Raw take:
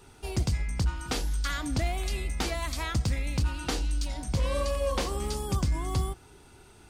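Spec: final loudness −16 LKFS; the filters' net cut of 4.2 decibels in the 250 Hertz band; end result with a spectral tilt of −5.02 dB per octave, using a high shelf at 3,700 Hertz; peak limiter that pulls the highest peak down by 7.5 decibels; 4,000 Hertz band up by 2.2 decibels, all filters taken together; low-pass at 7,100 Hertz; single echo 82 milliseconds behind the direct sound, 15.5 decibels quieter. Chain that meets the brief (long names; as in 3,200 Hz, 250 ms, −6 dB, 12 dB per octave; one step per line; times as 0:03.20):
low-pass filter 7,100 Hz
parametric band 250 Hz −6 dB
high-shelf EQ 3,700 Hz −9 dB
parametric band 4,000 Hz +9 dB
brickwall limiter −22.5 dBFS
single-tap delay 82 ms −15.5 dB
level +17 dB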